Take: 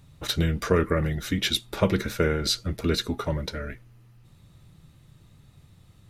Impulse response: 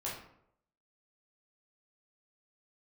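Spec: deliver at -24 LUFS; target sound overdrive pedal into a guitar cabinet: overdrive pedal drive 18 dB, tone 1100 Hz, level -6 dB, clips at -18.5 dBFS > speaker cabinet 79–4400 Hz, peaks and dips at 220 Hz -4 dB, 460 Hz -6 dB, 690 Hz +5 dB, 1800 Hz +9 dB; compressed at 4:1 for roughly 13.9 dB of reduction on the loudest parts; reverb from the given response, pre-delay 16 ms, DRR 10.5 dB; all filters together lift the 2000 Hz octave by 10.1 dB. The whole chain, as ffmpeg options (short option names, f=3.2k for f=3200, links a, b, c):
-filter_complex "[0:a]equalizer=f=2k:t=o:g=6,acompressor=threshold=-34dB:ratio=4,asplit=2[a][b];[1:a]atrim=start_sample=2205,adelay=16[c];[b][c]afir=irnorm=-1:irlink=0,volume=-12.5dB[d];[a][d]amix=inputs=2:normalize=0,asplit=2[e][f];[f]highpass=f=720:p=1,volume=18dB,asoftclip=type=tanh:threshold=-18.5dB[g];[e][g]amix=inputs=2:normalize=0,lowpass=f=1.1k:p=1,volume=-6dB,highpass=79,equalizer=f=220:t=q:w=4:g=-4,equalizer=f=460:t=q:w=4:g=-6,equalizer=f=690:t=q:w=4:g=5,equalizer=f=1.8k:t=q:w=4:g=9,lowpass=f=4.4k:w=0.5412,lowpass=f=4.4k:w=1.3066,volume=8.5dB"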